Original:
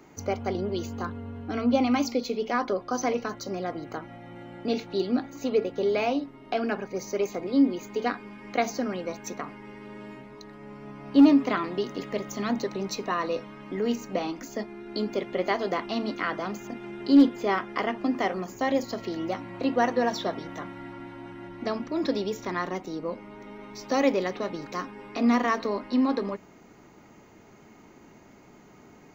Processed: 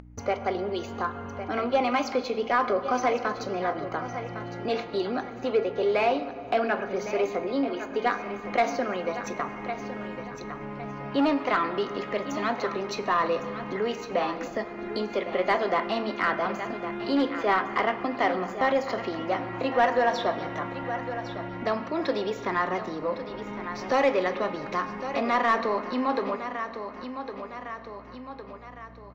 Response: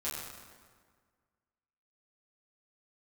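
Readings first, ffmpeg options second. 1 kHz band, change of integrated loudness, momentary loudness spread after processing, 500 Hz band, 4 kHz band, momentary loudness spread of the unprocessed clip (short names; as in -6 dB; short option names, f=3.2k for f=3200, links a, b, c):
+5.0 dB, -0.5 dB, 12 LU, +2.0 dB, +0.5 dB, 17 LU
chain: -filter_complex "[0:a]bass=f=250:g=10,treble=f=4k:g=-6,acrossover=split=400|3300[a][b][c];[a]acompressor=threshold=-39dB:ratio=6[d];[d][b][c]amix=inputs=3:normalize=0,agate=range=-39dB:threshold=-41dB:ratio=16:detection=peak,aeval=exprs='val(0)+0.001*(sin(2*PI*60*n/s)+sin(2*PI*2*60*n/s)/2+sin(2*PI*3*60*n/s)/3+sin(2*PI*4*60*n/s)/4+sin(2*PI*5*60*n/s)/5)':c=same,aecho=1:1:1108|2216|3324:0.224|0.0582|0.0151,asplit=2[e][f];[1:a]atrim=start_sample=2205,lowshelf=f=220:g=10.5[g];[f][g]afir=irnorm=-1:irlink=0,volume=-14.5dB[h];[e][h]amix=inputs=2:normalize=0,acompressor=mode=upward:threshold=-31dB:ratio=2.5,asplit=2[i][j];[j]highpass=f=720:p=1,volume=12dB,asoftclip=type=tanh:threshold=-12dB[k];[i][k]amix=inputs=2:normalize=0,lowpass=f=2.3k:p=1,volume=-6dB"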